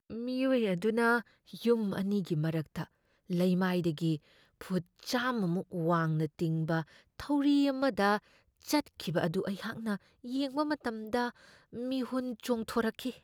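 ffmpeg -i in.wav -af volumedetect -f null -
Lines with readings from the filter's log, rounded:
mean_volume: -32.2 dB
max_volume: -14.6 dB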